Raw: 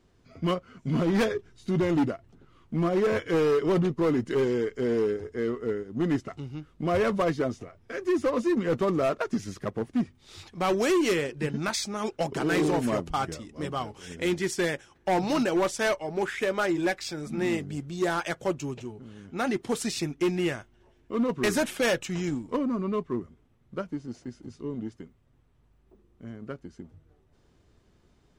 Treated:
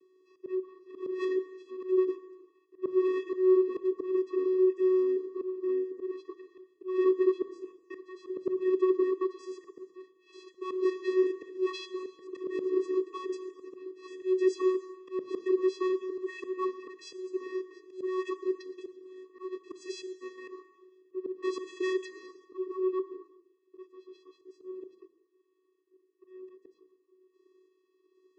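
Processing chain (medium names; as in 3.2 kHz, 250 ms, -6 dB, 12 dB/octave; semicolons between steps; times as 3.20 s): pitch shift switched off and on -6.5 st, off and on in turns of 469 ms; Chebyshev shaper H 5 -18 dB, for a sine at -16.5 dBFS; vocoder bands 16, square 372 Hz; slow attack 191 ms; gated-style reverb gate 440 ms falling, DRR 11 dB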